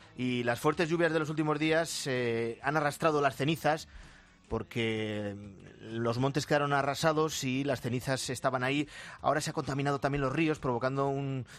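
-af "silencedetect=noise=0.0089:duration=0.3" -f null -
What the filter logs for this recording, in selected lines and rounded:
silence_start: 4.01
silence_end: 4.51 | silence_duration: 0.50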